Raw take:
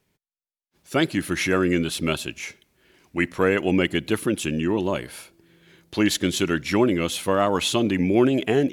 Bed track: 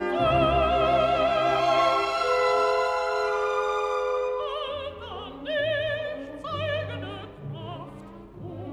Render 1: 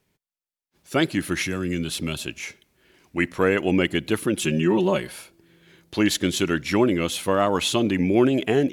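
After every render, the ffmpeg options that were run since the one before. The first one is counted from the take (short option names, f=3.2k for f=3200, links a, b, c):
-filter_complex "[0:a]asettb=1/sr,asplit=3[a][b][c];[a]atrim=end=1.424[d];[b]atrim=start=1.42:end=2.21,asetpts=PTS-STARTPTS,afade=t=in:d=0.004:c=qsin,afade=t=out:st=0.786:d=0.004:c=qsin,acrossover=split=220|3000[e][f][g];[f]acompressor=threshold=-32dB:ratio=3:attack=3.2:release=140:knee=2.83:detection=peak[h];[e][h][g]amix=inputs=3:normalize=0[i];[c]atrim=start=2.206[j];[d][i]acrossfade=d=0.004:c1=hsin:c2=qsin[k];[k][j]acrossfade=d=0.004:c1=qsin:c2=hsin,asettb=1/sr,asplit=3[l][m][n];[l]atrim=end=4.374[o];[m]atrim=start=4.37:end=5.13,asetpts=PTS-STARTPTS,afade=t=in:d=0.004:c=qsin,afade=t=out:st=0.756:d=0.004:c=qsin,aecho=1:1:5.4:0.92,atrim=end_sample=33516[p];[n]atrim=start=5.126[q];[o][p]acrossfade=d=0.004:c1=hsin:c2=qsin[r];[r][q]acrossfade=d=0.004:c1=qsin:c2=hsin"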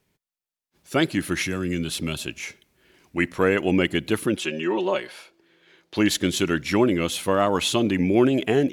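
-filter_complex "[0:a]asettb=1/sr,asplit=3[a][b][c];[a]atrim=end=4.374[d];[b]atrim=start=4.37:end=5.96,asetpts=PTS-STARTPTS,afade=t=in:d=0.004:c=qsin,afade=t=out:st=1.586:d=0.004:c=qsin,acrossover=split=320 6100:gain=0.141 1 0.224[e][f][g];[e][f][g]amix=inputs=3:normalize=0[h];[c]atrim=start=5.956[i];[d][h]acrossfade=d=0.004:c1=hsin:c2=qsin[j];[j][i]acrossfade=d=0.004:c1=qsin:c2=hsin"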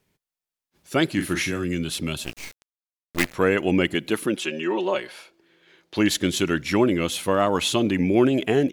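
-filter_complex "[0:a]asplit=3[a][b][c];[a]afade=t=out:st=1.16:d=0.02[d];[b]asplit=2[e][f];[f]adelay=40,volume=-7.5dB[g];[e][g]amix=inputs=2:normalize=0,afade=t=in:st=1.16:d=0.02,afade=t=out:st=1.63:d=0.02[h];[c]afade=t=in:st=1.63:d=0.02[i];[d][h][i]amix=inputs=3:normalize=0,asettb=1/sr,asplit=3[j][k][l];[j]atrim=end=2.244[m];[k]atrim=start=2.24:end=3.34,asetpts=PTS-STARTPTS,afade=t=in:d=0.004:c=qsin,afade=t=out:st=1.096:d=0.004:c=qsin,acrusher=bits=4:dc=4:mix=0:aa=0.000001[n];[l]atrim=start=3.336[o];[m][n]acrossfade=d=0.004:c1=hsin:c2=qsin[p];[p][o]acrossfade=d=0.004:c1=qsin:c2=hsin,asettb=1/sr,asplit=3[q][r][s];[q]atrim=end=3.944[t];[r]atrim=start=3.94:end=4.97,asetpts=PTS-STARTPTS,afade=t=in:d=0.004:c=qsin,afade=t=out:st=1.026:d=0.004:c=qsin,equalizer=f=82:w=1.5:g=-15[u];[s]atrim=start=4.966[v];[t][u]acrossfade=d=0.004:c1=hsin:c2=qsin[w];[w][v]acrossfade=d=0.004:c1=qsin:c2=hsin"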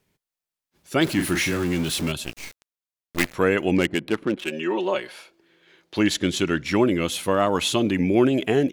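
-filter_complex "[0:a]asettb=1/sr,asplit=3[a][b][c];[a]atrim=end=1.014[d];[b]atrim=start=1.01:end=2.12,asetpts=PTS-STARTPTS,afade=t=in:d=0.004:c=qsin,afade=t=out:st=1.106:d=0.004:c=qsin,aeval=exprs='val(0)+0.5*0.0376*sgn(val(0))':c=same[e];[c]atrim=start=2.116[f];[d][e]acrossfade=d=0.004:c1=hsin:c2=qsin[g];[g][f]acrossfade=d=0.004:c1=qsin:c2=hsin,asplit=3[h][i][j];[h]afade=t=out:st=3.75:d=0.02[k];[i]adynamicsmooth=sensitivity=3:basefreq=1k,afade=t=in:st=3.75:d=0.02,afade=t=out:st=4.51:d=0.02[l];[j]afade=t=in:st=4.51:d=0.02[m];[k][l][m]amix=inputs=3:normalize=0,asettb=1/sr,asplit=3[n][o][p];[n]atrim=end=6.004[q];[o]atrim=start=6:end=6.74,asetpts=PTS-STARTPTS,afade=t=in:d=0.004:c=qsin,afade=t=out:st=0.736:d=0.004:c=qsin,adynamicsmooth=sensitivity=6.5:basefreq=7.6k[r];[p]atrim=start=6.736[s];[q][r]acrossfade=d=0.004:c1=hsin:c2=qsin[t];[t][s]acrossfade=d=0.004:c1=qsin:c2=hsin"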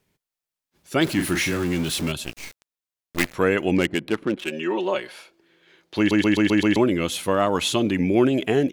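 -filter_complex "[0:a]asplit=7[a][b][c][d][e][f][g];[a]atrim=end=6.112[h];[b]atrim=start=5.978:end=6.112[i];[c]atrim=start=5.978:end=6.112[j];[d]atrim=start=5.978:end=6.112[k];[e]atrim=start=5.978:end=6.112[l];[f]atrim=start=5.978:end=6.112[m];[g]atrim=start=6.758[n];[h][i]acrossfade=d=0.004:c1=hsin:c2=hsin[o];[o][j]acrossfade=d=0.004:c1=hsin:c2=hsin[p];[p][k]acrossfade=d=0.004:c1=hsin:c2=hsin[q];[q][l]acrossfade=d=0.004:c1=hsin:c2=hsin[r];[r][m]acrossfade=d=0.004:c1=hsin:c2=hsin[s];[s][n]acrossfade=d=0.004:c1=hsin:c2=hsin"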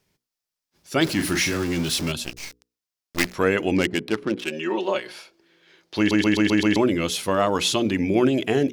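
-af "equalizer=f=5.2k:t=o:w=0.57:g=6.5,bandreject=f=60:t=h:w=6,bandreject=f=120:t=h:w=6,bandreject=f=180:t=h:w=6,bandreject=f=240:t=h:w=6,bandreject=f=300:t=h:w=6,bandreject=f=360:t=h:w=6,bandreject=f=420:t=h:w=6,bandreject=f=480:t=h:w=6"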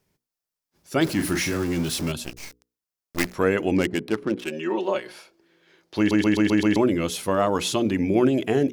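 -af "equalizer=f=3.6k:w=0.58:g=-5.5"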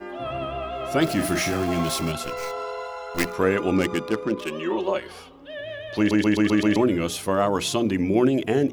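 -filter_complex "[1:a]volume=-8.5dB[a];[0:a][a]amix=inputs=2:normalize=0"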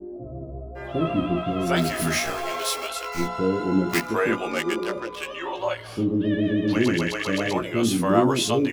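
-filter_complex "[0:a]asplit=2[a][b];[b]adelay=17,volume=-4dB[c];[a][c]amix=inputs=2:normalize=0,acrossover=split=470[d][e];[e]adelay=750[f];[d][f]amix=inputs=2:normalize=0"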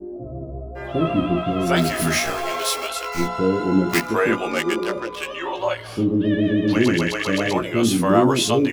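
-af "volume=3.5dB,alimiter=limit=-3dB:level=0:latency=1"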